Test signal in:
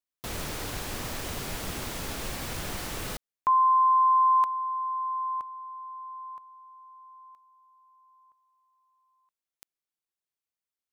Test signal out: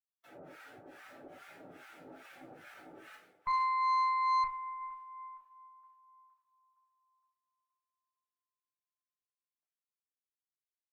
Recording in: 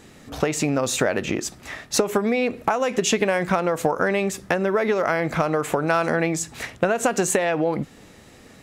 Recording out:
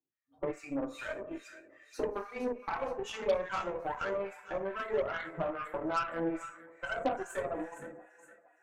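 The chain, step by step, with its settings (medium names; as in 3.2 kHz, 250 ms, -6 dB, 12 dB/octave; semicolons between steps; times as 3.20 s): expander on every frequency bin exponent 2; high-pass 110 Hz 24 dB/octave; three-band isolator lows -17 dB, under 300 Hz, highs -21 dB, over 2.1 kHz; two-slope reverb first 0.47 s, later 1.8 s, from -16 dB, DRR -3 dB; harmonic tremolo 2.4 Hz, depth 100%, crossover 930 Hz; feedback echo behind a high-pass 465 ms, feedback 48%, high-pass 1.5 kHz, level -9 dB; Chebyshev shaper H 8 -22 dB, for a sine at -12.5 dBFS; trim -6.5 dB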